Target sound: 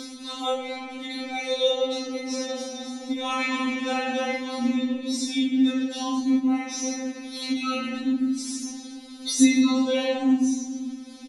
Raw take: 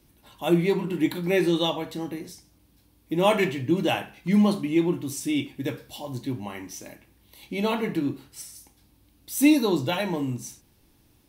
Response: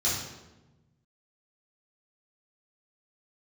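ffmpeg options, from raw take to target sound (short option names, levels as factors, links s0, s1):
-filter_complex "[0:a]asplit=3[s0][s1][s2];[s0]afade=t=out:st=2.29:d=0.02[s3];[s1]asplit=5[s4][s5][s6][s7][s8];[s5]adelay=276,afreqshift=37,volume=0.562[s9];[s6]adelay=552,afreqshift=74,volume=0.186[s10];[s7]adelay=828,afreqshift=111,volume=0.061[s11];[s8]adelay=1104,afreqshift=148,volume=0.0202[s12];[s4][s9][s10][s11][s12]amix=inputs=5:normalize=0,afade=t=in:st=2.29:d=0.02,afade=t=out:st=4.67:d=0.02[s13];[s2]afade=t=in:st=4.67:d=0.02[s14];[s3][s13][s14]amix=inputs=3:normalize=0[s15];[1:a]atrim=start_sample=2205[s16];[s15][s16]afir=irnorm=-1:irlink=0,aresample=22050,aresample=44100,acompressor=mode=upward:threshold=0.112:ratio=2.5,equalizer=f=7600:t=o:w=0.86:g=-4.5,acompressor=threshold=0.0891:ratio=2,afftfilt=real='re*3.46*eq(mod(b,12),0)':imag='im*3.46*eq(mod(b,12),0)':win_size=2048:overlap=0.75,volume=1.41"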